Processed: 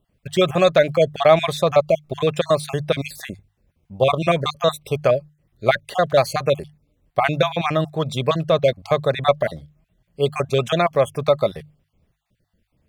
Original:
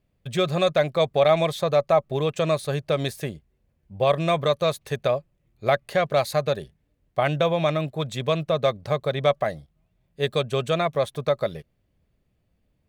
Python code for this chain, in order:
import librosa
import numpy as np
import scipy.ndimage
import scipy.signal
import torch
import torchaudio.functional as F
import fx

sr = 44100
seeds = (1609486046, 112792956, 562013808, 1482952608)

y = fx.spec_dropout(x, sr, seeds[0], share_pct=33)
y = fx.hum_notches(y, sr, base_hz=50, count=3)
y = F.gain(torch.from_numpy(y), 6.0).numpy()